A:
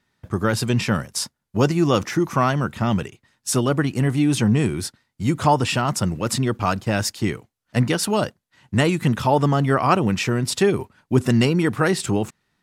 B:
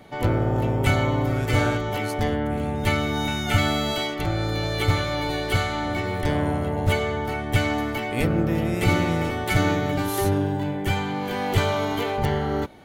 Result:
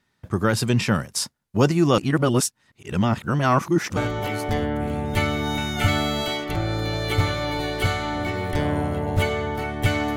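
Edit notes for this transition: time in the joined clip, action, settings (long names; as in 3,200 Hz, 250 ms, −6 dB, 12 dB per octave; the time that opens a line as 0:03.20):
A
0:01.98–0:03.97: reverse
0:03.97: continue with B from 0:01.67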